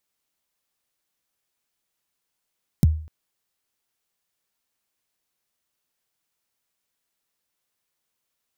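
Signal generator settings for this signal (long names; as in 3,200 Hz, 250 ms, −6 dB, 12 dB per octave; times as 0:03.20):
synth kick length 0.25 s, from 210 Hz, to 78 Hz, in 23 ms, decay 0.46 s, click on, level −9 dB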